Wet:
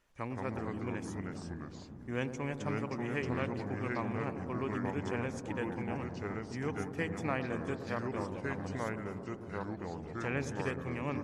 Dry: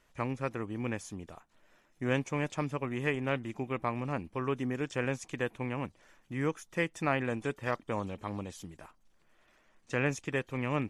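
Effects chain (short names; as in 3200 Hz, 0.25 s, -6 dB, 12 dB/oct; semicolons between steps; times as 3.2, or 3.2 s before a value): varispeed -3%; dark delay 0.104 s, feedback 81%, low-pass 980 Hz, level -9.5 dB; echoes that change speed 0.135 s, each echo -3 st, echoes 2; gain -5.5 dB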